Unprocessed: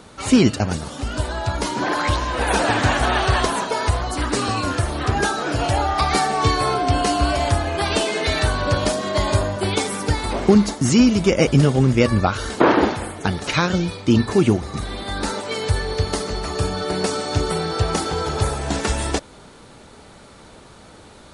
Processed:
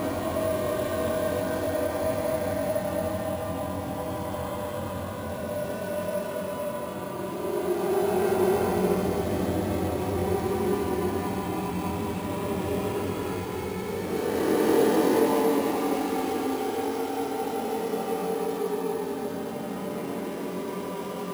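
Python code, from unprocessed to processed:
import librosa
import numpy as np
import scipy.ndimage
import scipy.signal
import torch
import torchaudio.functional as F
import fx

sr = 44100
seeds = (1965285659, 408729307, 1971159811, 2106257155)

y = scipy.signal.medfilt(x, 25)
y = scipy.signal.sosfilt(scipy.signal.butter(2, 170.0, 'highpass', fs=sr, output='sos'), y)
y = fx.paulstretch(y, sr, seeds[0], factor=44.0, window_s=0.05, from_s=9.44)
y = fx.doubler(y, sr, ms=22.0, db=-4.0)
y = np.repeat(y[::4], 4)[:len(y)]
y = y * 10.0 ** (-3.5 / 20.0)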